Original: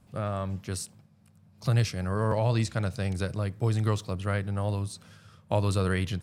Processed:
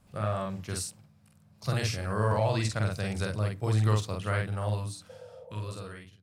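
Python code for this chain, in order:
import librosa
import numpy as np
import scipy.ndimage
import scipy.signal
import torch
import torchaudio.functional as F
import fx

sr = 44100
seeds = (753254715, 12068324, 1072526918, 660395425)

y = fx.fade_out_tail(x, sr, length_s=1.8)
y = fx.peak_eq(y, sr, hz=250.0, db=-4.0, octaves=2.1)
y = fx.hum_notches(y, sr, base_hz=60, count=5)
y = fx.doubler(y, sr, ms=47.0, db=-2.5)
y = fx.spec_repair(y, sr, seeds[0], start_s=5.12, length_s=0.6, low_hz=470.0, high_hz=940.0, source='after')
y = fx.attack_slew(y, sr, db_per_s=540.0)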